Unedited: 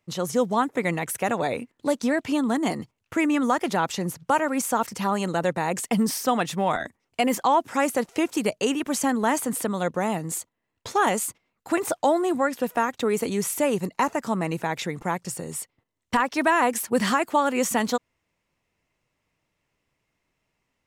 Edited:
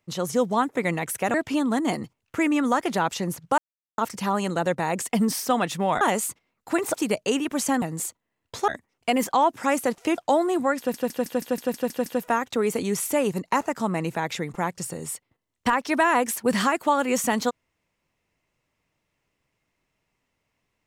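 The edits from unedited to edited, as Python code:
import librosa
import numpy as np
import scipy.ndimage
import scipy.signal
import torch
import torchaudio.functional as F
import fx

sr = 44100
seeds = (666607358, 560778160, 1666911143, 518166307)

y = fx.edit(x, sr, fx.cut(start_s=1.34, length_s=0.78),
    fx.silence(start_s=4.36, length_s=0.4),
    fx.swap(start_s=6.79, length_s=1.5, other_s=11.0, other_length_s=0.93),
    fx.cut(start_s=9.17, length_s=0.97),
    fx.stutter(start_s=12.53, slice_s=0.16, count=9), tone=tone)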